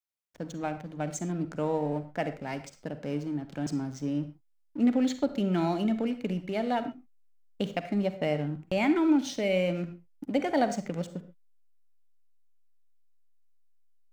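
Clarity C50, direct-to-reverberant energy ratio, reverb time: 11.5 dB, 10.5 dB, non-exponential decay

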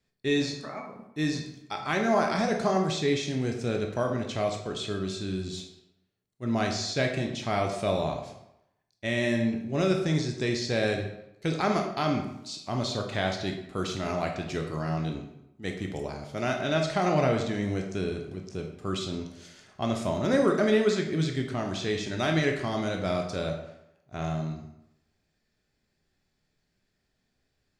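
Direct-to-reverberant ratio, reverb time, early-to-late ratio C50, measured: 2.0 dB, 0.85 s, 6.0 dB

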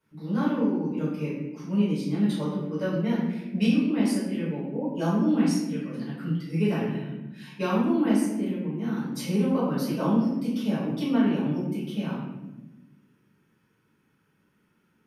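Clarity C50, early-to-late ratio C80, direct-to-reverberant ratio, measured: 1.0 dB, 4.0 dB, −11.0 dB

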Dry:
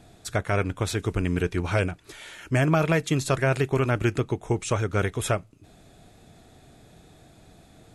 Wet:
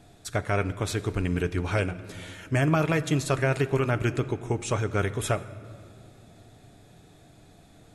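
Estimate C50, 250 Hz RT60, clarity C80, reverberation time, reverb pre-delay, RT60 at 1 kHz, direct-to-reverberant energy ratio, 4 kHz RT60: 15.0 dB, 4.2 s, 16.0 dB, 2.7 s, 7 ms, 2.3 s, 11.0 dB, 1.5 s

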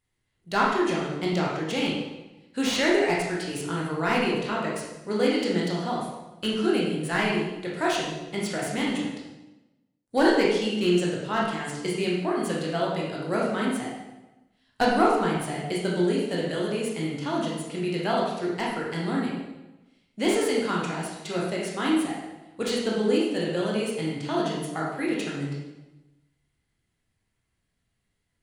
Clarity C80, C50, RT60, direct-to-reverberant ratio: 4.0 dB, 0.5 dB, 1.0 s, −4.5 dB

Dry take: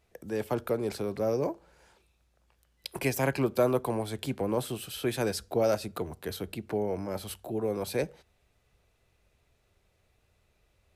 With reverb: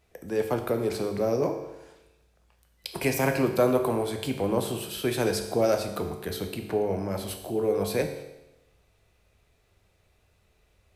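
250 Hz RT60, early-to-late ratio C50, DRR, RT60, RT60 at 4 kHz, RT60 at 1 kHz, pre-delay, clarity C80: 1.0 s, 8.0 dB, 5.0 dB, 0.95 s, 0.95 s, 0.95 s, 9 ms, 10.0 dB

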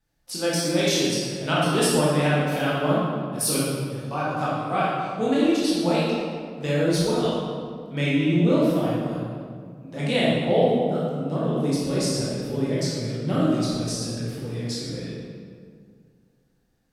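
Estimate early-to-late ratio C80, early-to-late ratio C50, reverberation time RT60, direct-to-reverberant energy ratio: 0.0 dB, −3.0 dB, 2.0 s, −8.0 dB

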